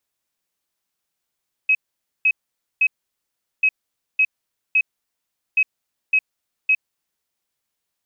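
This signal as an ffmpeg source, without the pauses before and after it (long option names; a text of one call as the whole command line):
ffmpeg -f lavfi -i "aevalsrc='0.237*sin(2*PI*2550*t)*clip(min(mod(mod(t,1.94),0.56),0.06-mod(mod(t,1.94),0.56))/0.005,0,1)*lt(mod(t,1.94),1.68)':duration=5.82:sample_rate=44100" out.wav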